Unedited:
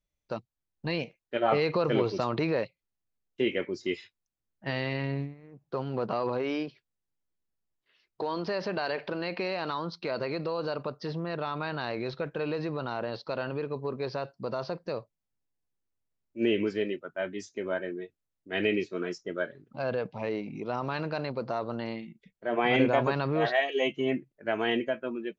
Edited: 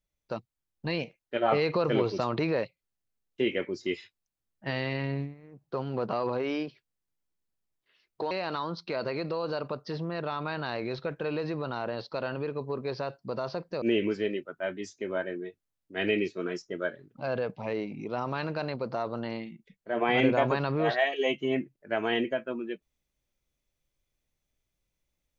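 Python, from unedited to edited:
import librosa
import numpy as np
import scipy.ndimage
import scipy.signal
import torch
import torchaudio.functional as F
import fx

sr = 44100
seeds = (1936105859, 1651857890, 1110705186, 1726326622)

y = fx.edit(x, sr, fx.cut(start_s=8.31, length_s=1.15),
    fx.cut(start_s=14.97, length_s=1.41), tone=tone)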